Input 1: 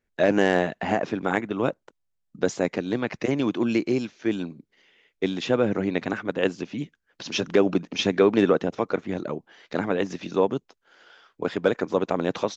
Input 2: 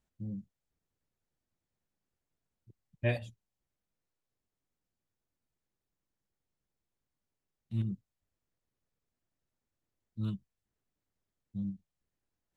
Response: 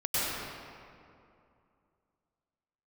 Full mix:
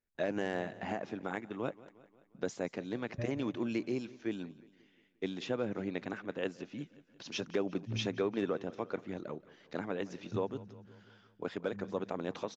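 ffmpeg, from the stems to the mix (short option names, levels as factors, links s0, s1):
-filter_complex "[0:a]volume=0.266,asplit=3[s0][s1][s2];[s1]volume=0.1[s3];[1:a]lowpass=1300,alimiter=level_in=1.68:limit=0.0631:level=0:latency=1,volume=0.596,adelay=150,volume=1.12,asplit=2[s4][s5];[s5]volume=0.188[s6];[s2]apad=whole_len=560531[s7];[s4][s7]sidechaincompress=threshold=0.00891:ratio=8:attack=16:release=203[s8];[s3][s6]amix=inputs=2:normalize=0,aecho=0:1:177|354|531|708|885|1062|1239|1416:1|0.53|0.281|0.149|0.0789|0.0418|0.0222|0.0117[s9];[s0][s8][s9]amix=inputs=3:normalize=0,alimiter=limit=0.0794:level=0:latency=1:release=418"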